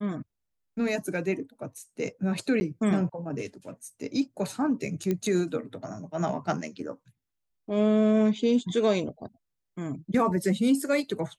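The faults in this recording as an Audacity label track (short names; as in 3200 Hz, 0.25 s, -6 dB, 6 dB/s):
2.600000	2.610000	gap 10 ms
5.110000	5.110000	pop -16 dBFS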